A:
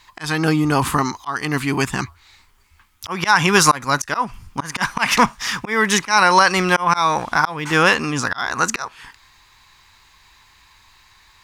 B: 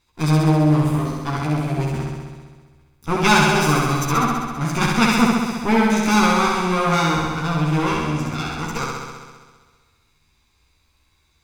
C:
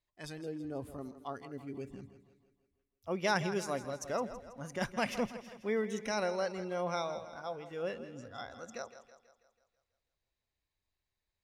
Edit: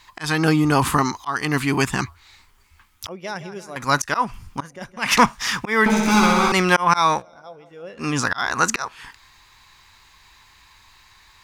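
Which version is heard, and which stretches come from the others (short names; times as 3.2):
A
3.09–3.76 from C
4.62–5.04 from C, crossfade 0.16 s
5.86–6.52 from B
7.18–8.02 from C, crossfade 0.10 s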